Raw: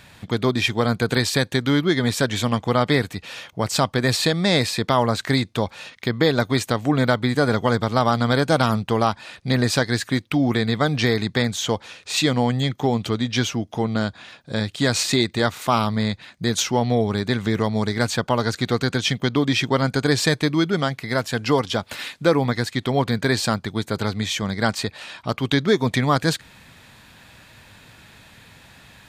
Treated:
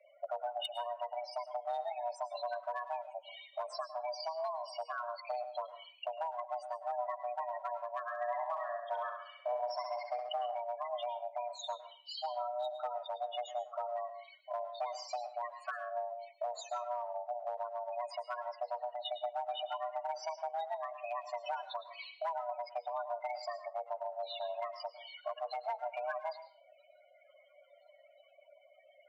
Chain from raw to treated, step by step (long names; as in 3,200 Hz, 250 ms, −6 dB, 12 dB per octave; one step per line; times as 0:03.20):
downward compressor 12 to 1, threshold −29 dBFS, peak gain reduction 17.5 dB
power curve on the samples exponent 1.4
spectral peaks only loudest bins 8
notch comb filter 370 Hz
hard clipping −33.5 dBFS, distortion −18 dB
frequency shifter +480 Hz
0:08.01–0:10.29: flutter between parallel walls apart 11.5 metres, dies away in 0.76 s
convolution reverb RT60 0.40 s, pre-delay 101 ms, DRR 11 dB
level +2.5 dB